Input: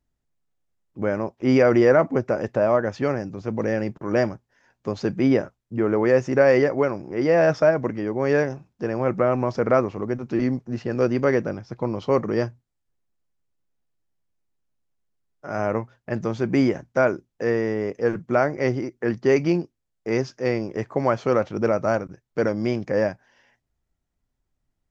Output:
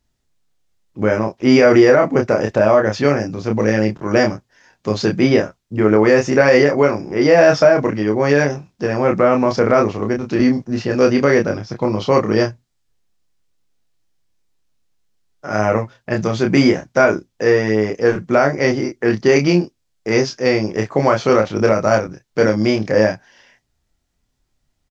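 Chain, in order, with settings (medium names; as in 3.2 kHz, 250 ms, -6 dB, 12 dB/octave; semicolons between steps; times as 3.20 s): peaking EQ 4.7 kHz +7.5 dB 2 oct; doubling 28 ms -4 dB; loudness maximiser +7 dB; trim -1 dB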